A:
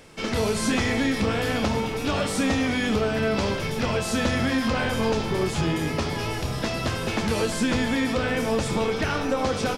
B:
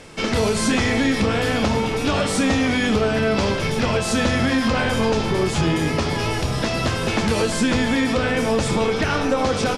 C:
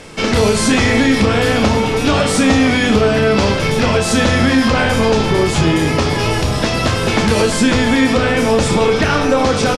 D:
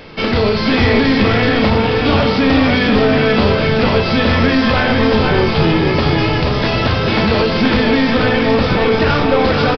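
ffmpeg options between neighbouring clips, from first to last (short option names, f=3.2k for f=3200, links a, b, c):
-filter_complex "[0:a]lowpass=f=11k:w=0.5412,lowpass=f=11k:w=1.3066,asplit=2[a][b];[b]alimiter=limit=-21dB:level=0:latency=1:release=249,volume=2dB[c];[a][c]amix=inputs=2:normalize=0"
-filter_complex "[0:a]asplit=2[a][b];[b]adelay=34,volume=-10.5dB[c];[a][c]amix=inputs=2:normalize=0,volume=6dB"
-af "aresample=11025,aeval=exprs='clip(val(0),-1,0.266)':c=same,aresample=44100,aecho=1:1:482:0.631"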